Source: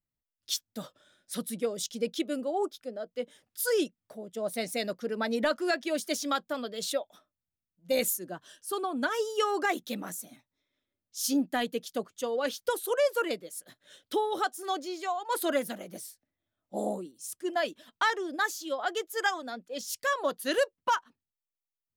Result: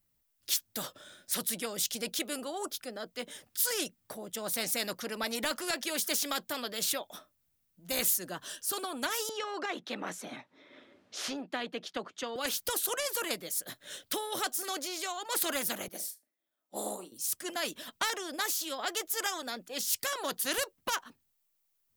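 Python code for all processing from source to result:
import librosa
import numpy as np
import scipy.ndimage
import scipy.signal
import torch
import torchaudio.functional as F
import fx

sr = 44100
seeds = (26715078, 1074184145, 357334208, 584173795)

y = fx.chain(x, sr, fx.bandpass_edges(low_hz=240.0, high_hz=3700.0),
    fx.high_shelf(hz=2500.0, db=-9.5),
    fx.band_squash(depth_pct=70), at=(9.29, 12.36))
y = fx.chain(y, sr, fx.highpass(hz=320.0, slope=12),
    fx.room_flutter(wall_m=6.6, rt60_s=0.2),
    fx.upward_expand(threshold_db=-54.0, expansion=1.5), at=(15.88, 17.12))
y = fx.high_shelf(y, sr, hz=10000.0, db=9.5)
y = fx.spectral_comp(y, sr, ratio=2.0)
y = y * 10.0 ** (-2.0 / 20.0)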